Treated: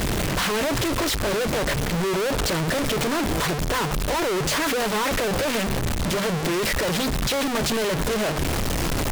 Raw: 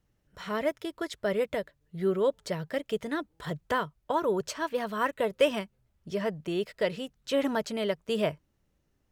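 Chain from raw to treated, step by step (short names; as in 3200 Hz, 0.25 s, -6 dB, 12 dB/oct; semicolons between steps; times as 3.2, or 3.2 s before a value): infinite clipping; notches 50/100/150/200/250 Hz; Doppler distortion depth 0.66 ms; gain +8.5 dB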